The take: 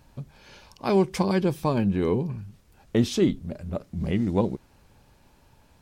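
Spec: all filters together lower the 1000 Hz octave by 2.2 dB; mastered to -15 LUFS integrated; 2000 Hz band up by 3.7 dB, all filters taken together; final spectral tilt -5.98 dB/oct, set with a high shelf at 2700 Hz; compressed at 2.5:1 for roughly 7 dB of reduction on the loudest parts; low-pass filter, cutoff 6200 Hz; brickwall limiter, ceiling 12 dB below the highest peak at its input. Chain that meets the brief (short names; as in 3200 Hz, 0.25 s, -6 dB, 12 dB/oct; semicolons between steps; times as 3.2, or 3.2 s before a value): LPF 6200 Hz; bell 1000 Hz -4 dB; bell 2000 Hz +3.5 dB; high shelf 2700 Hz +5 dB; compressor 2.5:1, threshold -26 dBFS; gain +22.5 dB; limiter -5 dBFS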